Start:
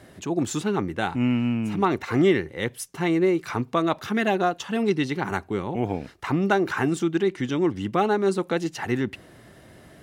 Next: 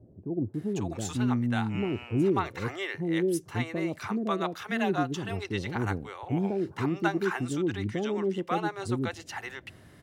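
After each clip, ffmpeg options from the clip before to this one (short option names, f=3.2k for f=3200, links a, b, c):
-filter_complex "[0:a]equalizer=f=100:w=2.7:g=7.5,acrossover=split=550[a][b];[b]adelay=540[c];[a][c]amix=inputs=2:normalize=0,volume=-5dB"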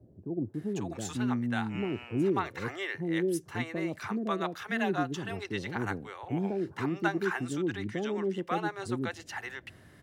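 -filter_complex "[0:a]equalizer=f=1.7k:w=3.7:g=4,acrossover=split=120[a][b];[a]acompressor=threshold=-47dB:ratio=6[c];[c][b]amix=inputs=2:normalize=0,volume=-2.5dB"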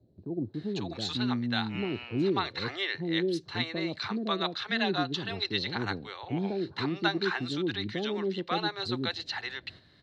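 -af "agate=range=-7dB:threshold=-52dB:ratio=16:detection=peak,lowpass=f=4.1k:t=q:w=11"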